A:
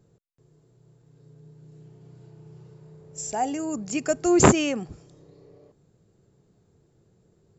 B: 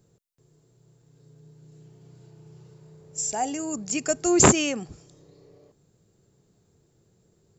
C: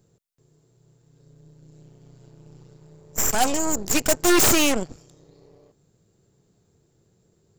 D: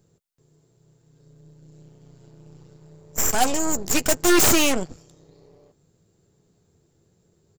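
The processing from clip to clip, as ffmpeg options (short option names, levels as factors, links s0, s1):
-af "highshelf=f=3500:g=9.5,volume=0.794"
-af "aeval=exprs='0.119*(abs(mod(val(0)/0.119+3,4)-2)-1)':c=same,aeval=exprs='0.126*(cos(1*acos(clip(val(0)/0.126,-1,1)))-cos(1*PI/2))+0.0224*(cos(3*acos(clip(val(0)/0.126,-1,1)))-cos(3*PI/2))+0.0316*(cos(6*acos(clip(val(0)/0.126,-1,1)))-cos(6*PI/2))':c=same,volume=2.24"
-filter_complex "[0:a]asplit=2[s0][s1];[s1]adelay=12,volume=0.237[s2];[s0][s2]amix=inputs=2:normalize=0"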